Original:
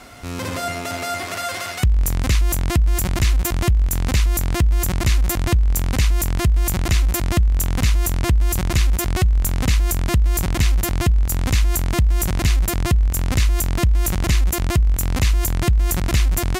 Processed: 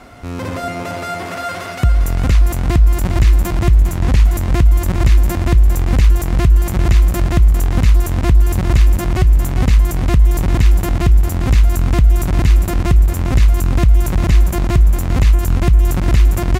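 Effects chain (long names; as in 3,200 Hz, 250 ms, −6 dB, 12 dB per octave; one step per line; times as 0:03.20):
high-shelf EQ 2,300 Hz −11 dB
repeating echo 402 ms, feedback 50%, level −7 dB
0:03.74–0:04.36: highs frequency-modulated by the lows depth 0.34 ms
level +4 dB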